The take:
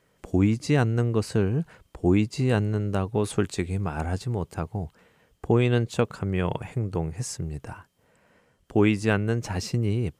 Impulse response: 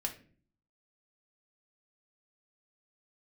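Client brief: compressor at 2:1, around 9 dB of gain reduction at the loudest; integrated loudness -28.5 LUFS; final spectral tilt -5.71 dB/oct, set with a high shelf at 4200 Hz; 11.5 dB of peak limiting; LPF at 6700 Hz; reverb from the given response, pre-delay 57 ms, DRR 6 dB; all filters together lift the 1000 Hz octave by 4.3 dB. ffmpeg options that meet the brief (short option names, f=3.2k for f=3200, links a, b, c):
-filter_complex "[0:a]lowpass=6.7k,equalizer=f=1k:t=o:g=5.5,highshelf=f=4.2k:g=4.5,acompressor=threshold=-32dB:ratio=2,alimiter=level_in=2dB:limit=-24dB:level=0:latency=1,volume=-2dB,asplit=2[a][b];[1:a]atrim=start_sample=2205,adelay=57[c];[b][c]afir=irnorm=-1:irlink=0,volume=-7.5dB[d];[a][d]amix=inputs=2:normalize=0,volume=7.5dB"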